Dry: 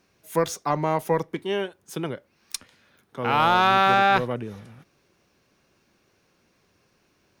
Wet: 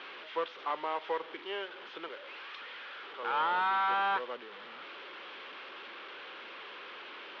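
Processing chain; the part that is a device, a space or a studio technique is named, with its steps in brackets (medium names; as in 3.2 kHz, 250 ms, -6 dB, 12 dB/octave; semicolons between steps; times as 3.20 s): 2.08–3.23 s: high-pass 280 Hz 24 dB/octave; digital answering machine (band-pass 350–3400 Hz; one-bit delta coder 32 kbps, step -32.5 dBFS; cabinet simulation 450–3400 Hz, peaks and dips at 680 Hz -7 dB, 1.3 kHz +3 dB, 3.2 kHz +6 dB); trim -7 dB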